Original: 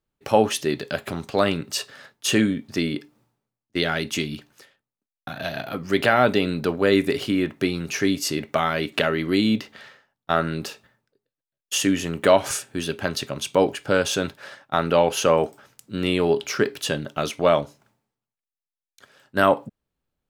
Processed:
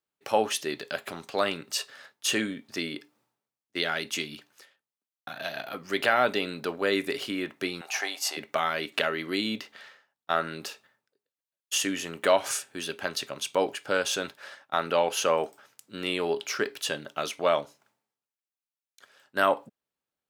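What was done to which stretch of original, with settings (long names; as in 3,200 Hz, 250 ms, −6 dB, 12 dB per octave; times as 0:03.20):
0:07.81–0:08.37: high-pass with resonance 760 Hz, resonance Q 9.1
whole clip: high-pass filter 610 Hz 6 dB per octave; level −3 dB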